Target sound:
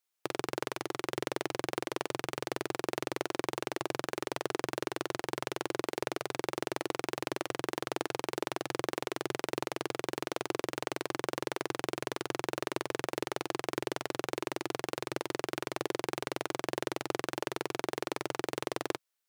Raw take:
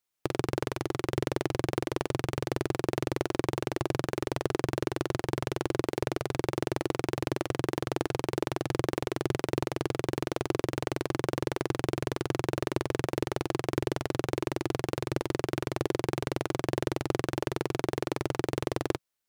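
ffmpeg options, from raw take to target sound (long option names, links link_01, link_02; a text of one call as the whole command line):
ffmpeg -i in.wav -af "highpass=frequency=590:poles=1" out.wav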